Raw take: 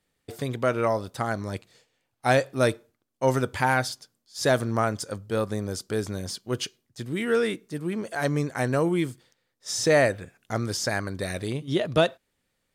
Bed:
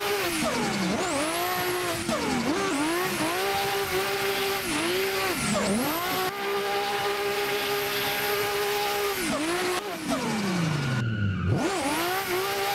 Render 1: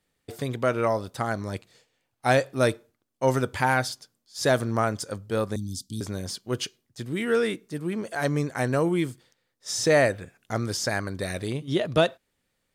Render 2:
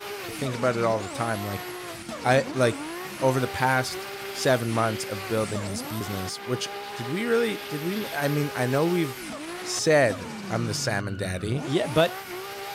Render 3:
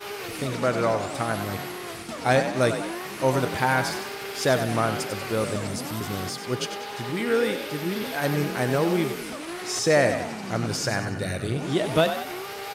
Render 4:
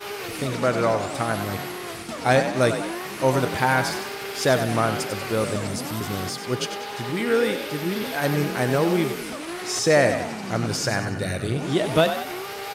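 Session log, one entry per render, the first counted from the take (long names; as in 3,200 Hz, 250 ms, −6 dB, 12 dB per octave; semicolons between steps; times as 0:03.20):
0:05.56–0:06.01: Chebyshev band-stop filter 280–3,300 Hz, order 4
mix in bed −8.5 dB
echo with shifted repeats 95 ms, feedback 49%, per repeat +38 Hz, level −9 dB
level +2 dB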